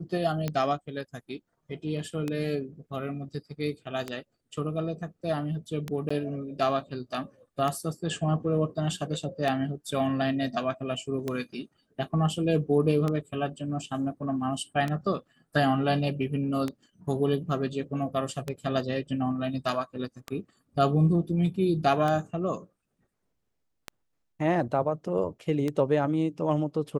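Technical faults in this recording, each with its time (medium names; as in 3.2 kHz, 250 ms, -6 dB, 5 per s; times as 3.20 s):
tick 33 1/3 rpm -16 dBFS
6.09–6.11 s: dropout 15 ms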